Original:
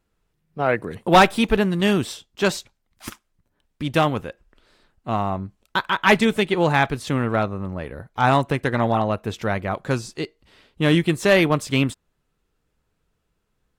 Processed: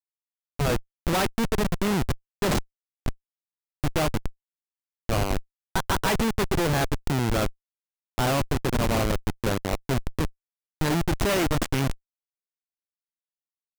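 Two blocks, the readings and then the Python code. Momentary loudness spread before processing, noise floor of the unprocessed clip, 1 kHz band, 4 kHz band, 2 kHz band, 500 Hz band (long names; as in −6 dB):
15 LU, −73 dBFS, −8.0 dB, −4.5 dB, −8.0 dB, −6.5 dB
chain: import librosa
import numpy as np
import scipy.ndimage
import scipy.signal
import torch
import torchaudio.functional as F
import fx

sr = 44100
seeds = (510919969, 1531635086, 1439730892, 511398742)

y = fx.high_shelf(x, sr, hz=6500.0, db=11.0)
y = fx.schmitt(y, sr, flips_db=-20.0)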